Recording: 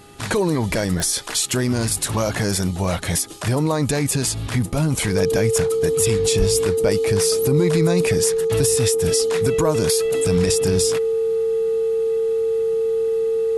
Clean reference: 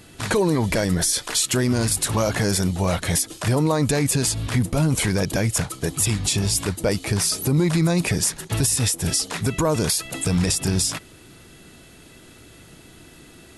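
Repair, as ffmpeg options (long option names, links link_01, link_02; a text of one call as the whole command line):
ffmpeg -i in.wav -filter_complex "[0:a]adeclick=threshold=4,bandreject=frequency=408:width_type=h:width=4,bandreject=frequency=816:width_type=h:width=4,bandreject=frequency=1224:width_type=h:width=4,bandreject=frequency=450:width=30,asplit=3[link_01][link_02][link_03];[link_01]afade=type=out:start_time=6.38:duration=0.02[link_04];[link_02]highpass=frequency=140:width=0.5412,highpass=frequency=140:width=1.3066,afade=type=in:start_time=6.38:duration=0.02,afade=type=out:start_time=6.5:duration=0.02[link_05];[link_03]afade=type=in:start_time=6.5:duration=0.02[link_06];[link_04][link_05][link_06]amix=inputs=3:normalize=0" out.wav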